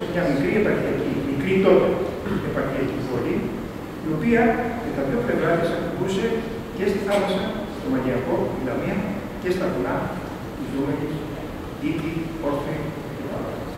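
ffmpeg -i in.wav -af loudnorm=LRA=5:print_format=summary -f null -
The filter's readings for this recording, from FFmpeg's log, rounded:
Input Integrated:    -24.4 LUFS
Input True Peak:      -3.1 dBTP
Input LRA:             5.3 LU
Input Threshold:     -34.4 LUFS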